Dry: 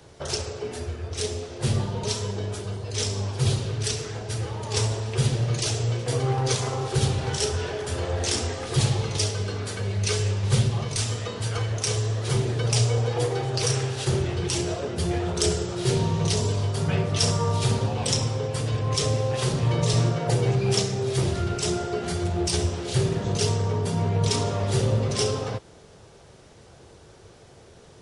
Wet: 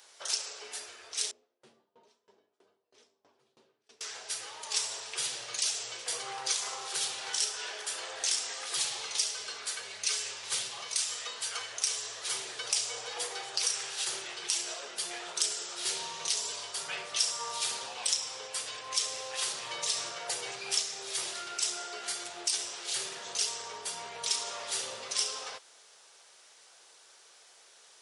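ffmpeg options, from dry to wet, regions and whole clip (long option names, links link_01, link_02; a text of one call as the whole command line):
ffmpeg -i in.wav -filter_complex "[0:a]asettb=1/sr,asplit=3[link_01][link_02][link_03];[link_01]atrim=end=1.314[link_04];[link_02]atrim=start=1.31:end=4.01,asetpts=PTS-STARTPTS,afade=type=in:duration=0.004:curve=qsin,afade=type=out:start_time=2.696:duration=0.004:curve=qsin,bandpass=frequency=260:width_type=q:width=1.8,asplit=2[link_05][link_06];[link_06]adelay=13,volume=-10.5dB[link_07];[link_05][link_07]amix=inputs=2:normalize=0,atrim=end_sample=119070,aeval=exprs='val(0)*pow(10,-25*if(lt(mod(3.1*n/s,1),2*abs(3.1)/1000),1-mod(3.1*n/s,1)/(2*abs(3.1)/1000),(mod(3.1*n/s,1)-2*abs(3.1)/1000)/(1-2*abs(3.1)/1000))/20)':channel_layout=same[link_08];[link_03]atrim=start=4.006[link_09];[link_04][link_08]acrossfade=duration=0.004:curve1=hsin:curve2=qsin[link_10];[link_10][link_09]acrossfade=duration=0.004:curve1=qsin:curve2=hsin,highpass=1000,highshelf=frequency=3200:gain=9,acompressor=threshold=-24dB:ratio=2,volume=-5dB" out.wav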